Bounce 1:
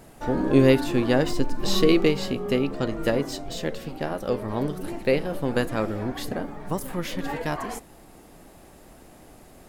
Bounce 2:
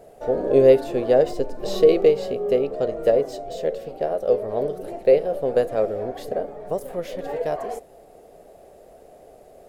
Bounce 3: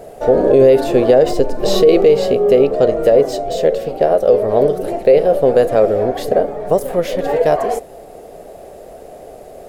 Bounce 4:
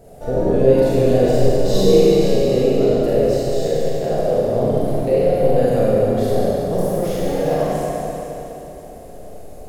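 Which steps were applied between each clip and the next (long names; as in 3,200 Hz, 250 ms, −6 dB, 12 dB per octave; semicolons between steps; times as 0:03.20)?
flat-topped bell 540 Hz +15.5 dB 1.1 octaves; level −7.5 dB
boost into a limiter +13 dB; level −1 dB
bass and treble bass +13 dB, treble +6 dB; four-comb reverb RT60 3.2 s, combs from 32 ms, DRR −8.5 dB; level −14.5 dB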